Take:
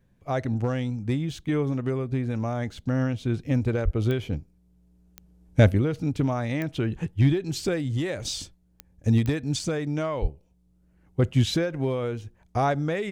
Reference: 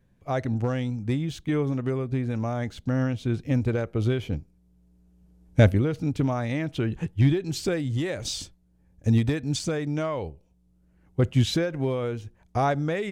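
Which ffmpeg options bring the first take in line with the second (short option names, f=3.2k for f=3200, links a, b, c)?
-filter_complex "[0:a]adeclick=t=4,asplit=3[a][b][c];[a]afade=t=out:st=3.84:d=0.02[d];[b]highpass=f=140:w=0.5412,highpass=f=140:w=1.3066,afade=t=in:st=3.84:d=0.02,afade=t=out:st=3.96:d=0.02[e];[c]afade=t=in:st=3.96:d=0.02[f];[d][e][f]amix=inputs=3:normalize=0,asplit=3[g][h][i];[g]afade=t=out:st=10.21:d=0.02[j];[h]highpass=f=140:w=0.5412,highpass=f=140:w=1.3066,afade=t=in:st=10.21:d=0.02,afade=t=out:st=10.33:d=0.02[k];[i]afade=t=in:st=10.33:d=0.02[l];[j][k][l]amix=inputs=3:normalize=0"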